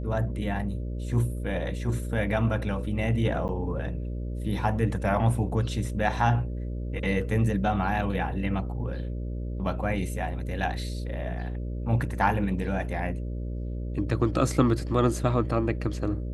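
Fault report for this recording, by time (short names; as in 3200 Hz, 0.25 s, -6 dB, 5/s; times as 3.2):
buzz 60 Hz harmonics 10 -32 dBFS
3.48–3.49 gap 9.5 ms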